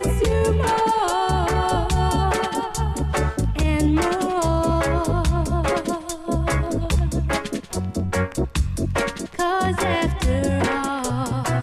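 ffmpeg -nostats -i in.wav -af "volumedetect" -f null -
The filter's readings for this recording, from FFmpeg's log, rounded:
mean_volume: -21.0 dB
max_volume: -10.3 dB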